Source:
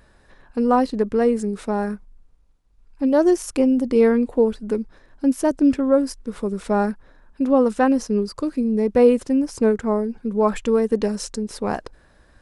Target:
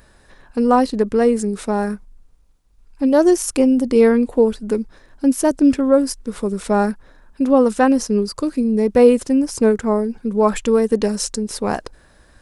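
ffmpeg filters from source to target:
-af "highshelf=f=5.1k:g=8,volume=3dB"

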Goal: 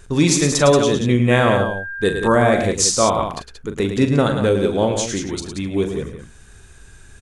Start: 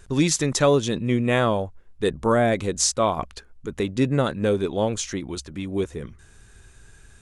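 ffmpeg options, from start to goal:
-filter_complex "[0:a]asettb=1/sr,asplit=3[a][b][c];[a]atrim=end=1.314[d];[b]atrim=start=1.31:end=2.43,asetpts=PTS-STARTPTS,afade=t=in:d=0.004:c=qsin,afade=t=out:st=1.116:d=0.004:c=qsin,aeval=exprs='val(0)+0.0398*sin(2*PI*1600*n/s)':c=same[e];[c]atrim=start=2.426[f];[d][e]acrossfade=d=0.004:c1=hsin:c2=qsin[g];[g][f]acrossfade=d=0.004:c1=qsin:c2=hsin,aecho=1:1:40.82|107.9|180.8:0.355|0.398|0.398,volume=4dB"

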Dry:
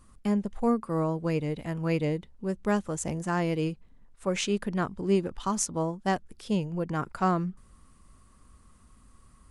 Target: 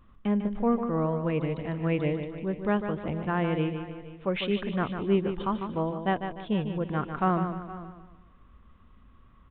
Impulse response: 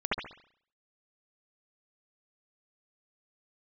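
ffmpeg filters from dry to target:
-filter_complex "[0:a]asplit=2[a][b];[b]aecho=0:1:471:0.141[c];[a][c]amix=inputs=2:normalize=0,aresample=8000,aresample=44100,asplit=2[d][e];[e]aecho=0:1:149|298|447|596|745:0.398|0.159|0.0637|0.0255|0.0102[f];[d][f]amix=inputs=2:normalize=0"

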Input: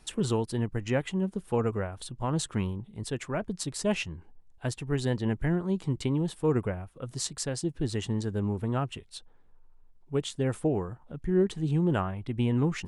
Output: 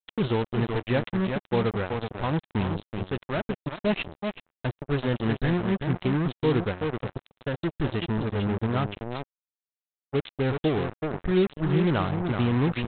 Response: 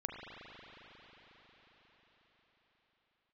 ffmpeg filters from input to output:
-af "aecho=1:1:378:0.473,aresample=8000,acrusher=bits=4:mix=0:aa=0.5,aresample=44100,volume=2dB"

